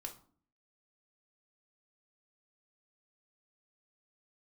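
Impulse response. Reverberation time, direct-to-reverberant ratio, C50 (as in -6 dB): 0.50 s, 2.0 dB, 11.5 dB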